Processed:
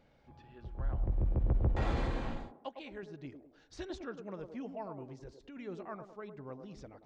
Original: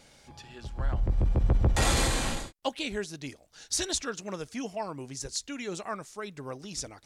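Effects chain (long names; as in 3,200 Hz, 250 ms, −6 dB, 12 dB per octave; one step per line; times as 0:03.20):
0:02.56–0:03.03: low-shelf EQ 480 Hz −9.5 dB
0:05.18–0:05.58: compressor whose output falls as the input rises −41 dBFS, ratio −1
head-to-tape spacing loss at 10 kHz 38 dB
delay with a band-pass on its return 105 ms, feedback 39%, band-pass 470 Hz, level −6 dB
level −5.5 dB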